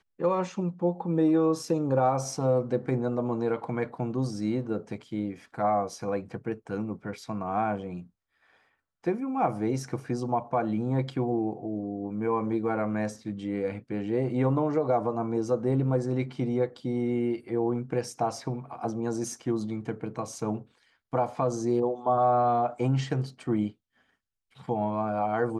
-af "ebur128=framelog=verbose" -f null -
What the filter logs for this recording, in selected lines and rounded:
Integrated loudness:
  I:         -29.0 LUFS
  Threshold: -39.3 LUFS
Loudness range:
  LRA:         5.2 LU
  Threshold: -49.5 LUFS
  LRA low:   -32.2 LUFS
  LRA high:  -27.0 LUFS